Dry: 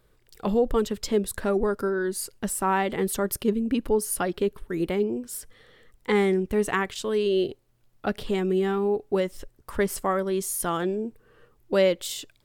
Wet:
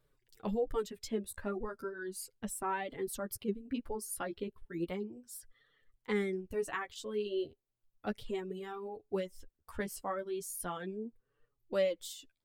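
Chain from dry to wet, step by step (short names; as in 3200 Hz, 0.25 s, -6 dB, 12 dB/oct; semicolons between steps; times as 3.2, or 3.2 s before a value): reverb removal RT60 1.8 s; flange 0.35 Hz, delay 6.6 ms, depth 8.2 ms, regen +6%; gain -8 dB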